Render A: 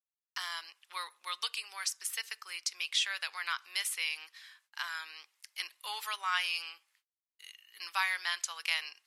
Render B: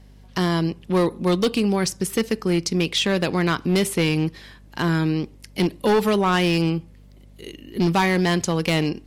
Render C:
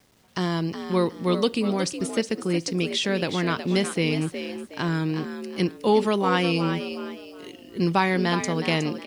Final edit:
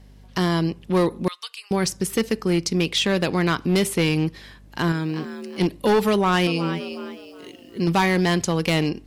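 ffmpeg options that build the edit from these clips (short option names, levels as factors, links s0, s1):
-filter_complex "[2:a]asplit=2[s0][s1];[1:a]asplit=4[s2][s3][s4][s5];[s2]atrim=end=1.282[s6];[0:a]atrim=start=1.278:end=1.712[s7];[s3]atrim=start=1.708:end=4.922[s8];[s0]atrim=start=4.918:end=5.612[s9];[s4]atrim=start=5.608:end=6.472[s10];[s1]atrim=start=6.468:end=7.872[s11];[s5]atrim=start=7.868[s12];[s6][s7]acrossfade=d=0.004:c1=hsin:c2=hsin[s13];[s13][s8]acrossfade=d=0.004:c1=hsin:c2=hsin[s14];[s14][s9]acrossfade=d=0.004:c1=hsin:c2=hsin[s15];[s15][s10]acrossfade=d=0.004:c1=hsin:c2=hsin[s16];[s16][s11]acrossfade=d=0.004:c1=hsin:c2=hsin[s17];[s17][s12]acrossfade=d=0.004:c1=hsin:c2=hsin"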